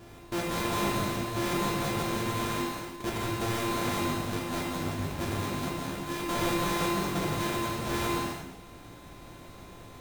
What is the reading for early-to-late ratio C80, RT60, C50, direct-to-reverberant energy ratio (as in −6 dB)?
0.5 dB, non-exponential decay, −1.0 dB, −3.5 dB